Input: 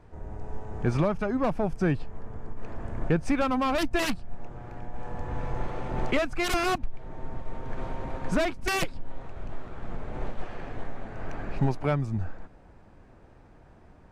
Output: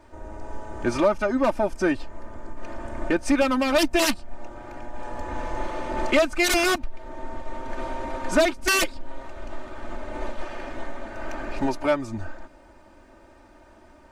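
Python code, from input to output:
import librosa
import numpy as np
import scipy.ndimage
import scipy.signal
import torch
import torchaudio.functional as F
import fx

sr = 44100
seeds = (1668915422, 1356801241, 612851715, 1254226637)

y = fx.bass_treble(x, sr, bass_db=-9, treble_db=5)
y = y + 0.8 * np.pad(y, (int(3.3 * sr / 1000.0), 0))[:len(y)]
y = F.gain(torch.from_numpy(y), 4.0).numpy()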